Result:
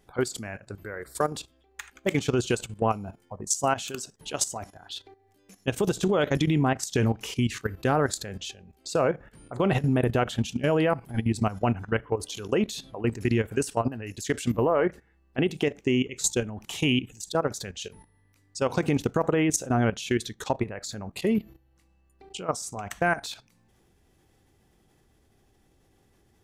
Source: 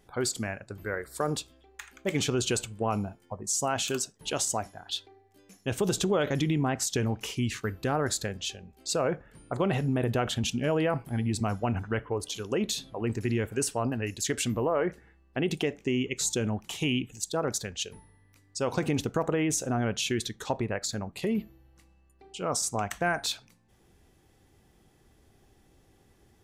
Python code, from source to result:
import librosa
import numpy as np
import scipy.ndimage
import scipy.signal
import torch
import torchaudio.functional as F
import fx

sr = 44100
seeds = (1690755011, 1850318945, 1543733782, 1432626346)

y = fx.level_steps(x, sr, step_db=14)
y = F.gain(torch.from_numpy(y), 6.0).numpy()